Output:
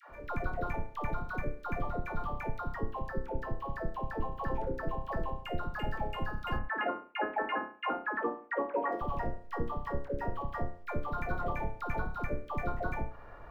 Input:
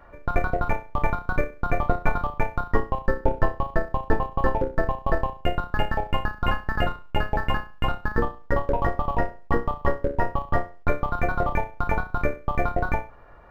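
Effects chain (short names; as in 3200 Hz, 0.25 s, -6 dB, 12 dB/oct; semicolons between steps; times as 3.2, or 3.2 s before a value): 6.58–8.92 elliptic band-pass 270–2400 Hz, stop band 40 dB; compressor 10:1, threshold -28 dBFS, peak gain reduction 16.5 dB; dispersion lows, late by 0.1 s, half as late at 580 Hz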